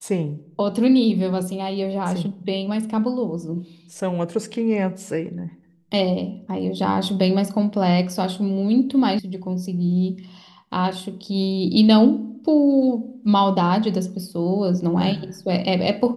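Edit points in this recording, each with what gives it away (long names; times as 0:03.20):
0:09.19: cut off before it has died away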